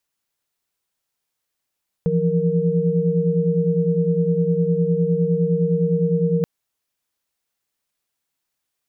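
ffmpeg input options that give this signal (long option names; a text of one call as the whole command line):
ffmpeg -f lavfi -i "aevalsrc='0.0944*(sin(2*PI*164.81*t)+sin(2*PI*174.61*t)+sin(2*PI*466.16*t))':duration=4.38:sample_rate=44100" out.wav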